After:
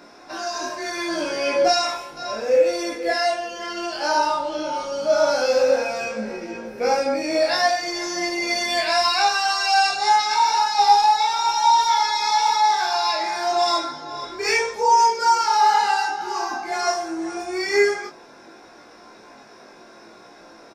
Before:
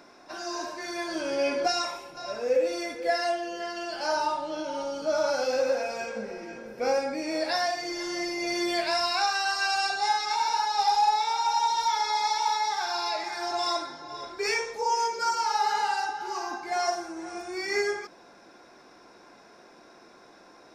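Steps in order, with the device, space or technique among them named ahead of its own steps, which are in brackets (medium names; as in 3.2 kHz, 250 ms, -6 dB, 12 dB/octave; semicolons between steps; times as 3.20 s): double-tracked vocal (doubling 27 ms -3.5 dB; chorus 0.74 Hz, delay 17 ms, depth 2 ms); trim +8.5 dB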